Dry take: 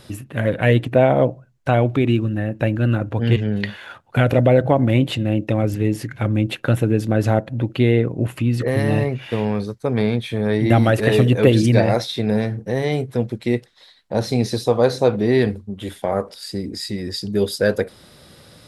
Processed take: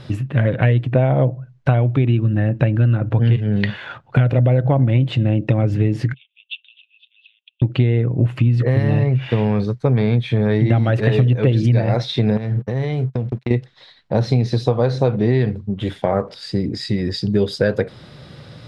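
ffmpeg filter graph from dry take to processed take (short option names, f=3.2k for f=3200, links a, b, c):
-filter_complex "[0:a]asettb=1/sr,asplit=3[a][b][c];[a]atrim=end=6.144[d];[b]atrim=start=6.14:end=7.62,asetpts=PTS-STARTPTS,afade=t=in:d=0.004:c=qsin,afade=t=out:st=1.476:d=0.004:c=qsin,acompressor=threshold=-25dB:ratio=4:attack=3.2:release=140:knee=1:detection=peak,asuperpass=centerf=3100:order=8:qfactor=2.9[e];[c]atrim=start=7.616[f];[d][e]acrossfade=d=0.004:c1=hsin:c2=qsin[g];[g][f]acrossfade=d=0.004:c1=qsin:c2=hsin,asettb=1/sr,asplit=3[h][i][j];[h]atrim=end=12.374[k];[i]atrim=start=12.37:end=13.51,asetpts=PTS-STARTPTS,afade=t=in:d=0.004:c=qsin,afade=t=out:st=1.136:d=0.004:c=qsin,agate=range=-16dB:threshold=-33dB:ratio=16:release=100:detection=peak,acompressor=threshold=-24dB:ratio=10:attack=3.2:release=140:knee=1:detection=peak,aeval=exprs='sgn(val(0))*max(abs(val(0))-0.00237,0)':c=same[l];[j]atrim=start=13.506[m];[k][l]acrossfade=d=0.004:c1=hsin:c2=qsin[n];[n][m]acrossfade=d=0.004:c1=qsin:c2=hsin,lowpass=4.2k,equalizer=f=130:w=2.6:g=11,acompressor=threshold=-17dB:ratio=6,volume=4.5dB"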